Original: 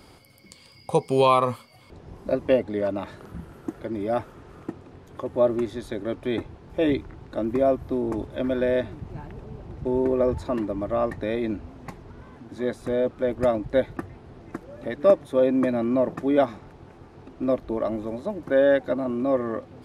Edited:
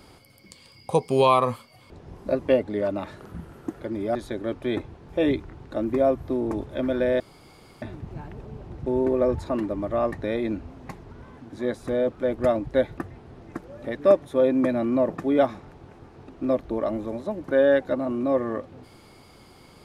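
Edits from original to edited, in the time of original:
4.15–5.76 cut
8.81 insert room tone 0.62 s

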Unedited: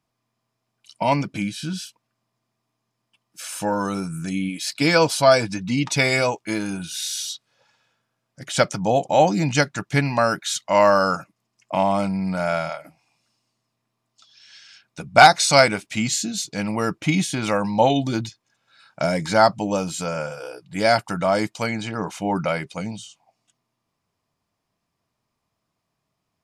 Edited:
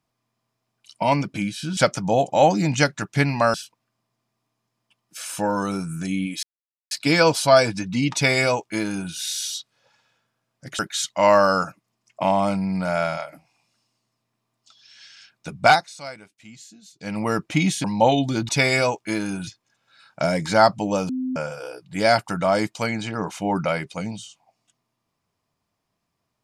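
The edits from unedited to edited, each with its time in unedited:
4.66 insert silence 0.48 s
5.89–6.87 copy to 18.27
8.54–10.31 move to 1.77
15.1–16.74 dip -21.5 dB, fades 0.29 s
17.36–17.62 cut
19.89–20.16 bleep 257 Hz -23 dBFS

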